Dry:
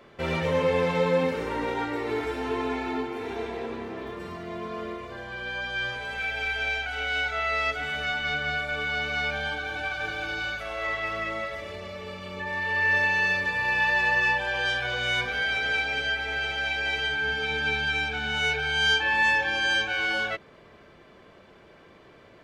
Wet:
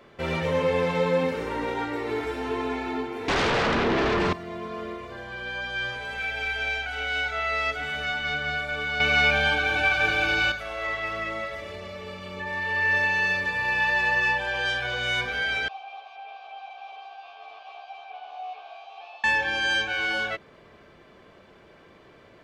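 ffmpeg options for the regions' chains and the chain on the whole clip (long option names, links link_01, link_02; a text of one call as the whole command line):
ffmpeg -i in.wav -filter_complex "[0:a]asettb=1/sr,asplit=3[link_01][link_02][link_03];[link_01]atrim=end=3.284[link_04];[link_02]atrim=start=3.28:end=4.33,asetpts=PTS-STARTPTS,afade=type=in:duration=0.004:curve=qsin,afade=type=out:start_time=1.046:duration=0.004:curve=qsin,lowpass=4500,aeval=exprs='0.1*sin(PI/2*5.62*val(0)/0.1)':channel_layout=same[link_05];[link_03]atrim=start=4.326[link_06];[link_04][link_05]acrossfade=duration=0.004:curve1=hsin:curve2=qsin[link_07];[link_07][link_06]acrossfade=duration=0.004:curve1=qsin:curve2=hsin,asettb=1/sr,asplit=3[link_08][link_09][link_10];[link_08]atrim=end=9.004[link_11];[link_09]atrim=start=9:end=10.52,asetpts=PTS-STARTPTS,afade=type=in:duration=0.004:curve=qsin,afade=type=out:start_time=1.516:duration=0.004:curve=qsin,equalizer=frequency=2500:width=6.2:gain=9,acontrast=85,asuperstop=centerf=2000:order=4:qfactor=7.1[link_12];[link_10]atrim=start=10.516[link_13];[link_11][link_12]acrossfade=duration=0.004:curve1=hsin:curve2=qsin[link_14];[link_14][link_13]acrossfade=duration=0.004:curve1=qsin:curve2=hsin,asettb=1/sr,asplit=3[link_15][link_16][link_17];[link_15]atrim=end=15.684[link_18];[link_16]atrim=start=15.68:end=19.24,asetpts=PTS-STARTPTS,afade=type=in:duration=0.004:curve=qsin,afade=type=out:start_time=3.556:duration=0.004:curve=qsin,aeval=exprs='0.0376*(abs(mod(val(0)/0.0376+3,4)-2)-1)':channel_layout=same,asplit=3[link_19][link_20][link_21];[link_19]bandpass=frequency=730:width_type=q:width=8,volume=0dB[link_22];[link_20]bandpass=frequency=1090:width_type=q:width=8,volume=-6dB[link_23];[link_21]bandpass=frequency=2440:width_type=q:width=8,volume=-9dB[link_24];[link_22][link_23][link_24]amix=inputs=3:normalize=0,highpass=430,equalizer=frequency=780:width_type=q:width=4:gain=9,equalizer=frequency=1400:width_type=q:width=4:gain=-6,equalizer=frequency=3400:width_type=q:width=4:gain=4,lowpass=frequency=4800:width=0.5412,lowpass=frequency=4800:width=1.3066[link_25];[link_17]atrim=start=19.236[link_26];[link_18][link_25]acrossfade=duration=0.004:curve1=hsin:curve2=qsin[link_27];[link_27][link_26]acrossfade=duration=0.004:curve1=qsin:curve2=hsin" out.wav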